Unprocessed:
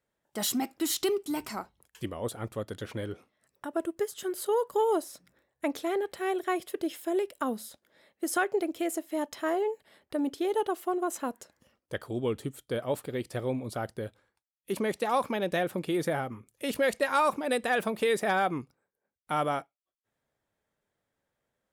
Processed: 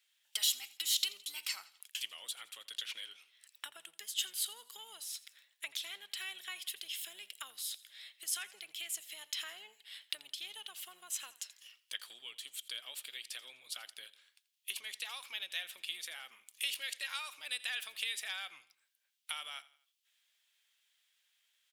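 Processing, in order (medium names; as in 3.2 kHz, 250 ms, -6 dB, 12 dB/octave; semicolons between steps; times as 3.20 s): octave divider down 1 oct, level +3 dB; in parallel at +1 dB: peak limiter -24 dBFS, peak gain reduction 9.5 dB; on the sum: compression 4:1, threshold -35 dBFS, peak gain reduction 14.5 dB; resonant high-pass 3 kHz, resonance Q 2.4; feedback delay 84 ms, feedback 44%, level -19 dB; trim +4 dB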